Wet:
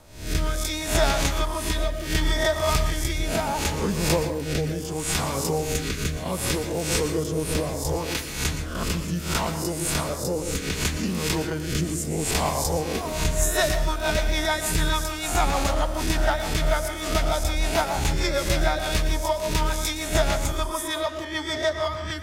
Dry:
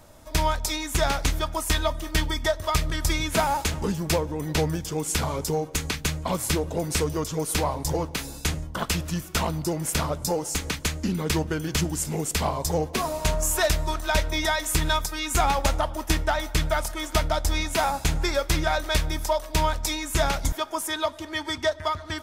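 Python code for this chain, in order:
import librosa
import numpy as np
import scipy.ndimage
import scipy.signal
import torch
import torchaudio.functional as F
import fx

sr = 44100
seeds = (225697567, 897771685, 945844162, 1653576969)

y = fx.spec_swells(x, sr, rise_s=0.56)
y = fx.rotary_switch(y, sr, hz=0.7, then_hz=6.7, switch_at_s=12.75)
y = fx.rev_plate(y, sr, seeds[0], rt60_s=0.51, hf_ratio=0.55, predelay_ms=105, drr_db=8.0)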